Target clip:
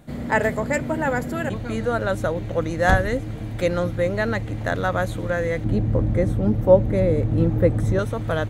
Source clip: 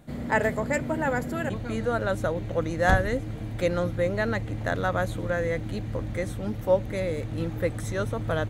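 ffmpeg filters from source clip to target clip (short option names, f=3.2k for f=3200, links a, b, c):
-filter_complex "[0:a]asettb=1/sr,asplit=3[a][b][c];[a]atrim=end=5.644[d];[b]atrim=start=5.64:end=7.99,asetpts=PTS-STARTPTS,afade=t=in:d=0.004:c=qsin,afade=t=out:st=2.346:d=0.004:c=qsin,tiltshelf=f=1.1k:g=8[e];[c]atrim=start=7.986[f];[d][e]acrossfade=d=0.004:c1=hsin:c2=qsin[g];[g][f]acrossfade=d=0.004:c1=qsin:c2=hsin,volume=3.5dB"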